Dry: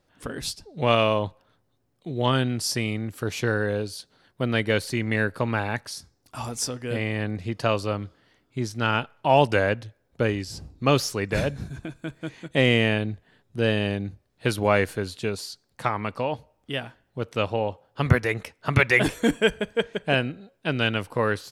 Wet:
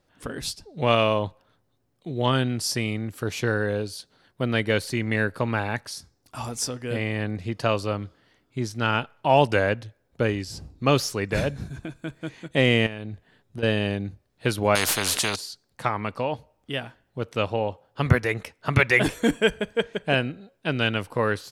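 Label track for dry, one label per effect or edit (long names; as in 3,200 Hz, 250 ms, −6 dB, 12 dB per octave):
12.860000	13.630000	downward compressor 12 to 1, threshold −28 dBFS
14.750000	15.360000	every bin compressed towards the loudest bin 4 to 1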